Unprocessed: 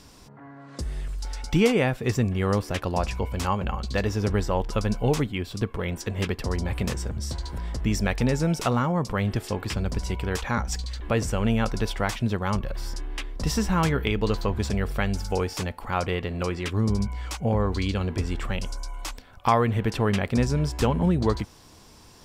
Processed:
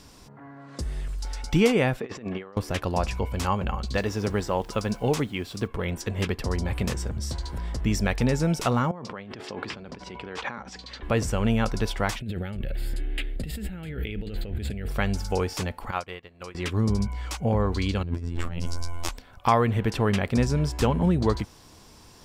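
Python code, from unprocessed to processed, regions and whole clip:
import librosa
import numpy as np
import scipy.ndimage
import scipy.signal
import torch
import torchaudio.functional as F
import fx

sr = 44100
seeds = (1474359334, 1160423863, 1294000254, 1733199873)

y = fx.chain(x, sr, fx.bandpass_edges(low_hz=280.0, high_hz=3100.0),
    fx.over_compress(threshold_db=-34.0, ratio=-0.5), at=(2.0, 2.57))
y = fx.highpass(y, sr, hz=140.0, slope=6, at=(3.97, 5.66), fade=0.02)
y = fx.dmg_noise_colour(y, sr, seeds[0], colour='pink', level_db=-58.0, at=(3.97, 5.66), fade=0.02)
y = fx.chain(y, sr, fx.over_compress(threshold_db=-32.0, ratio=-1.0),
    fx.bandpass_edges(low_hz=200.0, high_hz=3900.0), at=(8.91, 11.03))
y = fx.chain(y, sr, fx.over_compress(threshold_db=-30.0, ratio=-1.0),
    fx.fixed_phaser(hz=2500.0, stages=4), at=(12.2, 14.88))
y = fx.chain(y, sr, fx.low_shelf(hz=490.0, db=-8.5),
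    fx.upward_expand(threshold_db=-40.0, expansion=2.5), at=(15.91, 16.55))
y = fx.chain(y, sr, fx.robotise(hz=85.3),
    fx.low_shelf(hz=430.0, db=10.0),
    fx.over_compress(threshold_db=-27.0, ratio=-1.0), at=(18.03, 19.09))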